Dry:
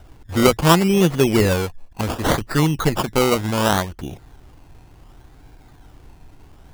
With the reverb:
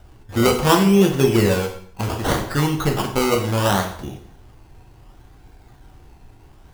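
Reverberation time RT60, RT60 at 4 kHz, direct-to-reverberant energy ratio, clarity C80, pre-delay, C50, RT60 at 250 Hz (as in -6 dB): 0.60 s, 0.55 s, 2.0 dB, 11.5 dB, 4 ms, 8.0 dB, 0.65 s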